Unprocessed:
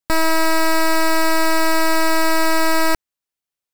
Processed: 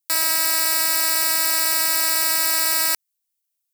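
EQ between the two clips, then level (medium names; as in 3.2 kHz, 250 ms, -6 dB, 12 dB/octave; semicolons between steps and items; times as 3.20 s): differentiator; +6.5 dB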